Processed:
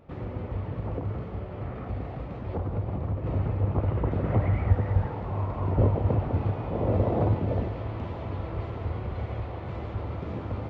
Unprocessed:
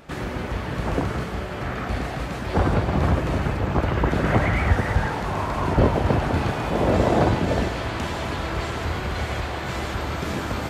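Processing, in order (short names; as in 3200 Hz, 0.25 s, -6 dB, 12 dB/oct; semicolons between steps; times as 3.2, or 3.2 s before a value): tape spacing loss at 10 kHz 40 dB; 0.64–3.24 compressor, threshold -23 dBFS, peak gain reduction 7.5 dB; thirty-one-band EQ 100 Hz +11 dB, 500 Hz +4 dB, 1600 Hz -8 dB; gain -6.5 dB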